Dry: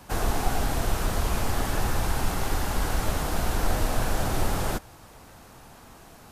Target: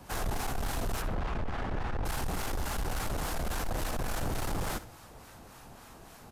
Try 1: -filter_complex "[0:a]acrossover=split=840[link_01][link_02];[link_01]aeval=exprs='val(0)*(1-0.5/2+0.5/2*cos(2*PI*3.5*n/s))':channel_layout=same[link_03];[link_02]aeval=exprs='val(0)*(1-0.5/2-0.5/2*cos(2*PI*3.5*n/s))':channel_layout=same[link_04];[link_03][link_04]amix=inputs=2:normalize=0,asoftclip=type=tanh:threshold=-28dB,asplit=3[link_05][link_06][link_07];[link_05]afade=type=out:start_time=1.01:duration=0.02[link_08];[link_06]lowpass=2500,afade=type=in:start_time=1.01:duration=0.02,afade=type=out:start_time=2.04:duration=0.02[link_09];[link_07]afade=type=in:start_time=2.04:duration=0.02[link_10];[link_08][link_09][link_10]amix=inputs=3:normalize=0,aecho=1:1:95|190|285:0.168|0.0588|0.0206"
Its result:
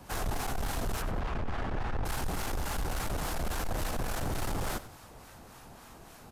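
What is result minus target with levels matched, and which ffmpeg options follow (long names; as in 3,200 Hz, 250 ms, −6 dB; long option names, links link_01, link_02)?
echo 32 ms late
-filter_complex "[0:a]acrossover=split=840[link_01][link_02];[link_01]aeval=exprs='val(0)*(1-0.5/2+0.5/2*cos(2*PI*3.5*n/s))':channel_layout=same[link_03];[link_02]aeval=exprs='val(0)*(1-0.5/2-0.5/2*cos(2*PI*3.5*n/s))':channel_layout=same[link_04];[link_03][link_04]amix=inputs=2:normalize=0,asoftclip=type=tanh:threshold=-28dB,asplit=3[link_05][link_06][link_07];[link_05]afade=type=out:start_time=1.01:duration=0.02[link_08];[link_06]lowpass=2500,afade=type=in:start_time=1.01:duration=0.02,afade=type=out:start_time=2.04:duration=0.02[link_09];[link_07]afade=type=in:start_time=2.04:duration=0.02[link_10];[link_08][link_09][link_10]amix=inputs=3:normalize=0,aecho=1:1:63|126|189:0.168|0.0588|0.0206"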